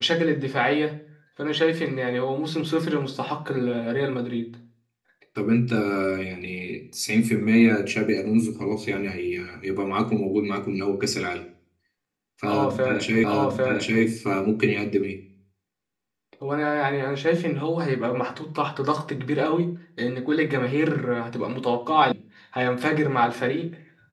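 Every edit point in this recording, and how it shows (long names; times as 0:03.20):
0:13.24: the same again, the last 0.8 s
0:22.12: cut off before it has died away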